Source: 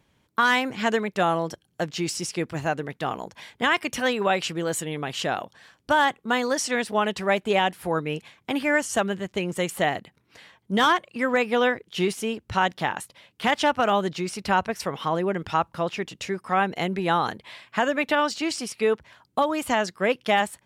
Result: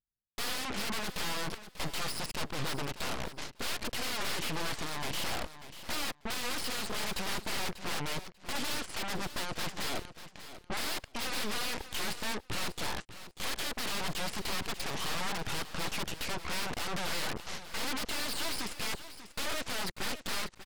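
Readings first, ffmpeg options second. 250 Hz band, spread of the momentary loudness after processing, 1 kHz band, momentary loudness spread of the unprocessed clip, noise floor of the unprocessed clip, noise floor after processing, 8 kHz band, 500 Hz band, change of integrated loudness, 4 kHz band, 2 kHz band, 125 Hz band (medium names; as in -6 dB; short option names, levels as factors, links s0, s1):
-14.0 dB, 5 LU, -15.0 dB, 9 LU, -68 dBFS, -61 dBFS, -3.0 dB, -17.0 dB, -10.5 dB, -3.5 dB, -11.0 dB, -9.0 dB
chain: -af "anlmdn=0.0631,alimiter=limit=0.188:level=0:latency=1:release=80,aresample=11025,aeval=exprs='0.0251*(abs(mod(val(0)/0.0251+3,4)-2)-1)':c=same,aresample=44100,aeval=exprs='0.0447*(cos(1*acos(clip(val(0)/0.0447,-1,1)))-cos(1*PI/2))+0.00562*(cos(7*acos(clip(val(0)/0.0447,-1,1)))-cos(7*PI/2))+0.0126*(cos(8*acos(clip(val(0)/0.0447,-1,1)))-cos(8*PI/2))':c=same,aecho=1:1:591|1182:0.224|0.0403"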